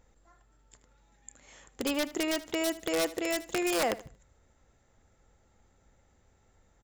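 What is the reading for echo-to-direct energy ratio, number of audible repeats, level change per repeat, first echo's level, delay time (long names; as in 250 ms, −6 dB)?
−16.5 dB, 2, −10.5 dB, −17.0 dB, 77 ms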